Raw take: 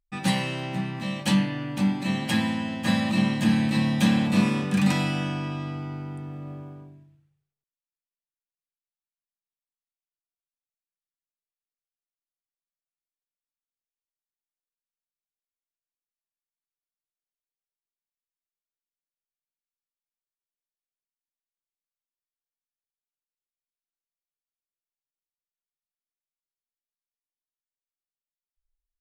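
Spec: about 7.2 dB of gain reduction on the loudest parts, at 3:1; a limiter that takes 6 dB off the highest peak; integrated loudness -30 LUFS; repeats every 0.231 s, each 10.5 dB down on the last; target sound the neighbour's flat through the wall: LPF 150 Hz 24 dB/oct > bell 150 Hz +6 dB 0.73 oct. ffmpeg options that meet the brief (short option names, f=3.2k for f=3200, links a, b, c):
-af "acompressor=threshold=-26dB:ratio=3,alimiter=limit=-21.5dB:level=0:latency=1,lowpass=f=150:w=0.5412,lowpass=f=150:w=1.3066,equalizer=f=150:t=o:w=0.73:g=6,aecho=1:1:231|462|693:0.299|0.0896|0.0269,volume=5dB"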